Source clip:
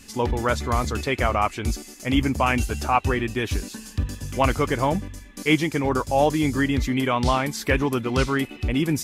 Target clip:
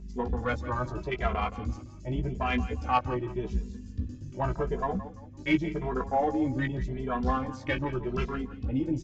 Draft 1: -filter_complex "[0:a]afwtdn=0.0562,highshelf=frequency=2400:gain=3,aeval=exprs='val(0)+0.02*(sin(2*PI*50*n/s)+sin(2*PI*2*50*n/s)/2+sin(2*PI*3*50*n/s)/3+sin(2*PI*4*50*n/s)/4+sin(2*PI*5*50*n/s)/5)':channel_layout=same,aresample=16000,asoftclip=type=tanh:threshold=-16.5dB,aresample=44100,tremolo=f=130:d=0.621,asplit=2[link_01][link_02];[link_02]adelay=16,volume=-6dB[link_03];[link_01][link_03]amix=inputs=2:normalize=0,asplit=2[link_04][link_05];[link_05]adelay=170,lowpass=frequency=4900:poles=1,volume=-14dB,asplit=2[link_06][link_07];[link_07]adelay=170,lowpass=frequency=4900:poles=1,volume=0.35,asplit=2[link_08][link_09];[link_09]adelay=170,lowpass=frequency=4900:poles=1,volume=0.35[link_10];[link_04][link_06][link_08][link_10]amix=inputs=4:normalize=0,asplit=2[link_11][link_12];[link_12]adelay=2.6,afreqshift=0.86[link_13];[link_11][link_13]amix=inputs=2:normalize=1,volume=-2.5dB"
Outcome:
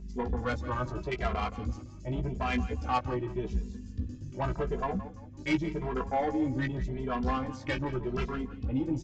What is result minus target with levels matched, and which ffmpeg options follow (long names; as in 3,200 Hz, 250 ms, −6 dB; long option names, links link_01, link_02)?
soft clipping: distortion +12 dB
-filter_complex "[0:a]afwtdn=0.0562,highshelf=frequency=2400:gain=3,aeval=exprs='val(0)+0.02*(sin(2*PI*50*n/s)+sin(2*PI*2*50*n/s)/2+sin(2*PI*3*50*n/s)/3+sin(2*PI*4*50*n/s)/4+sin(2*PI*5*50*n/s)/5)':channel_layout=same,aresample=16000,asoftclip=type=tanh:threshold=-7.5dB,aresample=44100,tremolo=f=130:d=0.621,asplit=2[link_01][link_02];[link_02]adelay=16,volume=-6dB[link_03];[link_01][link_03]amix=inputs=2:normalize=0,asplit=2[link_04][link_05];[link_05]adelay=170,lowpass=frequency=4900:poles=1,volume=-14dB,asplit=2[link_06][link_07];[link_07]adelay=170,lowpass=frequency=4900:poles=1,volume=0.35,asplit=2[link_08][link_09];[link_09]adelay=170,lowpass=frequency=4900:poles=1,volume=0.35[link_10];[link_04][link_06][link_08][link_10]amix=inputs=4:normalize=0,asplit=2[link_11][link_12];[link_12]adelay=2.6,afreqshift=0.86[link_13];[link_11][link_13]amix=inputs=2:normalize=1,volume=-2.5dB"